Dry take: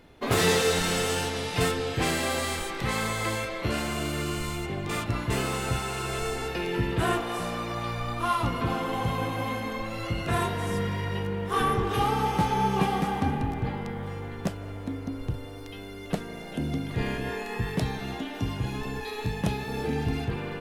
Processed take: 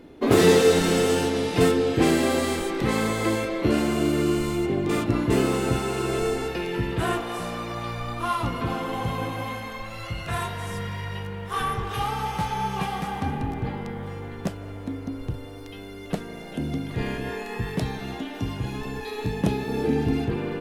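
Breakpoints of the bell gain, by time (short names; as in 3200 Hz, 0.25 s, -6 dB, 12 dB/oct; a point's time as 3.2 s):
bell 310 Hz 1.5 oct
6.25 s +12.5 dB
6.67 s +1 dB
9.28 s +1 dB
9.75 s -9 dB
12.94 s -9 dB
13.51 s +2 dB
18.94 s +2 dB
19.44 s +9 dB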